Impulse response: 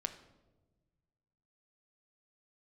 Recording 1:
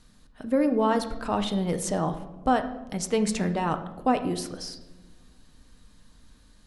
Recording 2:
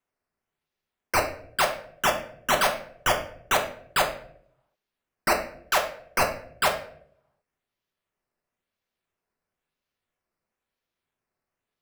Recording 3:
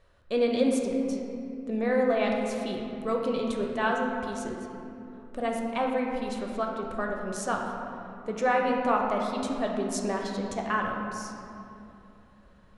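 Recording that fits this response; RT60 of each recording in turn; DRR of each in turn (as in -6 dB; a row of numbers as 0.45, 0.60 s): 1; not exponential, 0.65 s, 2.9 s; 7.5, 1.5, -0.5 dB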